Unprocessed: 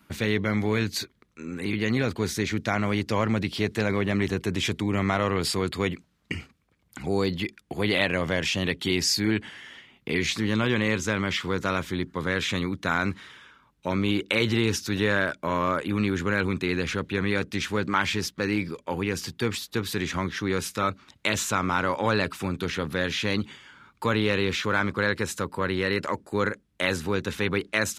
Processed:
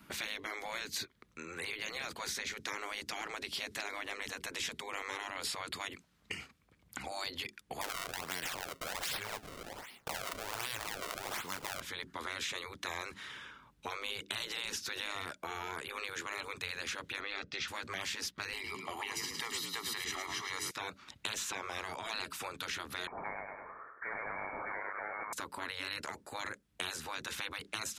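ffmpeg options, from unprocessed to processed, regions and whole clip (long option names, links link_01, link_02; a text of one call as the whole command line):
ffmpeg -i in.wav -filter_complex "[0:a]asettb=1/sr,asplit=3[link_01][link_02][link_03];[link_01]atrim=end=7.814[link_04];[link_02]atrim=start=7.81:end=11.81,asetpts=PTS-STARTPTS,afade=type=in:duration=0.004:curve=qsin,afade=type=out:start_time=3.996:duration=0.004:curve=qsin,aemphasis=mode=production:type=bsi,acrusher=samples=30:mix=1:aa=0.000001:lfo=1:lforange=48:lforate=1.3[link_05];[link_03]atrim=start=11.806[link_06];[link_04][link_05]acrossfade=duration=0.004:curve1=hsin:curve2=qsin[link_07];[link_07][link_06]acrossfade=duration=0.004:curve1=qsin:curve2=hsin,asettb=1/sr,asplit=3[link_08][link_09][link_10];[link_08]atrim=end=17.204[link_11];[link_09]atrim=start=17.2:end=17.68,asetpts=PTS-STARTPTS,afade=type=in:duration=0.004:curve=qsin,afade=type=out:start_time=0.476:duration=0.004:curve=qsin,lowpass=frequency=5200:width=0.5412,lowpass=frequency=5200:width=1.3066,aecho=1:1:1.5:0.35,atrim=end_sample=21168[link_12];[link_10]atrim=start=17.676[link_13];[link_11][link_12]acrossfade=duration=0.004:curve1=hsin:curve2=qsin[link_14];[link_14][link_13]acrossfade=duration=0.004:curve1=qsin:curve2=hsin,asettb=1/sr,asplit=3[link_15][link_16][link_17];[link_15]atrim=end=18.534[link_18];[link_16]atrim=start=18.53:end=20.71,asetpts=PTS-STARTPTS,afade=type=in:duration=0.004:curve=qsin,afade=type=out:start_time=2.176:duration=0.004:curve=qsin,highpass=56,aecho=1:1:1:0.93,atrim=end_sample=96138,asplit=6[link_19][link_20][link_21][link_22][link_23][link_24];[link_20]adelay=107,afreqshift=33,volume=-9dB[link_25];[link_21]adelay=214,afreqshift=66,volume=-16.3dB[link_26];[link_22]adelay=321,afreqshift=99,volume=-23.7dB[link_27];[link_23]adelay=428,afreqshift=132,volume=-31dB[link_28];[link_24]adelay=535,afreqshift=165,volume=-38.3dB[link_29];[link_19][link_25][link_26][link_27][link_28][link_29]amix=inputs=6:normalize=0,atrim=end_sample=96138[link_30];[link_17]atrim=start=20.706[link_31];[link_18][link_30]acrossfade=duration=0.004:curve1=hsin:curve2=qsin[link_32];[link_32][link_31]acrossfade=duration=0.004:curve1=qsin:curve2=hsin,asettb=1/sr,asplit=3[link_33][link_34][link_35];[link_33]atrim=end=23.074[link_36];[link_34]atrim=start=23.07:end=25.33,asetpts=PTS-STARTPTS,afade=type=in:duration=0.004:curve=qsin,afade=type=out:start_time=2.256:duration=0.004:curve=qsin,highpass=frequency=640:width=0.5412,highpass=frequency=640:width=1.3066,aecho=1:1:101|202|303|404|505:0.562|0.236|0.0992|0.0417|0.0175,atrim=end_sample=99666,lowpass=frequency=2300:width_type=q:width=0.5098,lowpass=frequency=2300:width_type=q:width=0.6013,lowpass=frequency=2300:width_type=q:width=0.9,lowpass=frequency=2300:width_type=q:width=2.563,afreqshift=-2700[link_37];[link_35]atrim=start=25.326[link_38];[link_36][link_37]acrossfade=duration=0.004:curve1=hsin:curve2=qsin[link_39];[link_39][link_38]acrossfade=duration=0.004:curve1=qsin:curve2=hsin,afftfilt=real='re*lt(hypot(re,im),0.141)':imag='im*lt(hypot(re,im),0.141)':win_size=1024:overlap=0.75,acrossover=split=530|5300[link_40][link_41][link_42];[link_40]acompressor=threshold=-54dB:ratio=4[link_43];[link_41]acompressor=threshold=-40dB:ratio=4[link_44];[link_42]acompressor=threshold=-44dB:ratio=4[link_45];[link_43][link_44][link_45]amix=inputs=3:normalize=0,volume=1dB" out.wav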